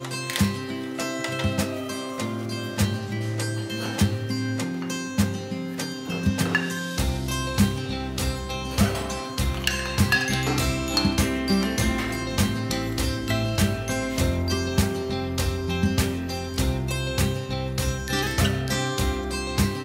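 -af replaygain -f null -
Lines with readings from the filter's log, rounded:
track_gain = +6.6 dB
track_peak = 0.223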